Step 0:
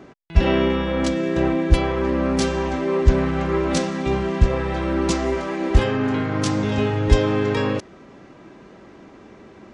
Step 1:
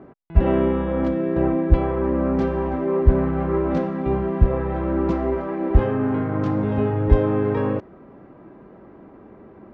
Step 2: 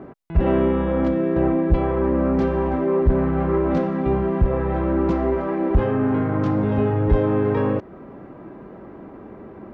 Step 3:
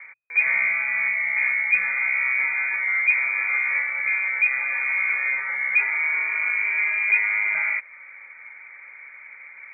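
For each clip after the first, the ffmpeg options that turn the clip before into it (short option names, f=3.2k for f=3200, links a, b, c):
-af "lowpass=1.2k"
-filter_complex "[0:a]asplit=2[a][b];[b]acompressor=threshold=-29dB:ratio=6,volume=-1dB[c];[a][c]amix=inputs=2:normalize=0,asoftclip=type=tanh:threshold=-8.5dB"
-af "lowpass=f=2.1k:t=q:w=0.5098,lowpass=f=2.1k:t=q:w=0.6013,lowpass=f=2.1k:t=q:w=0.9,lowpass=f=2.1k:t=q:w=2.563,afreqshift=-2500,bandreject=f=60:t=h:w=6,bandreject=f=120:t=h:w=6,volume=-3.5dB"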